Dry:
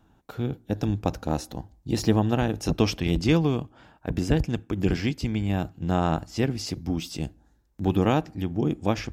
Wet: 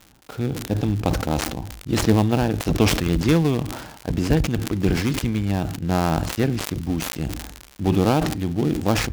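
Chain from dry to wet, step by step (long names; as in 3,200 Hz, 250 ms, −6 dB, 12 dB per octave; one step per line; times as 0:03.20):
gap after every zero crossing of 0.16 ms
surface crackle 110 per second −37 dBFS
level that may fall only so fast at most 54 dB per second
level +3 dB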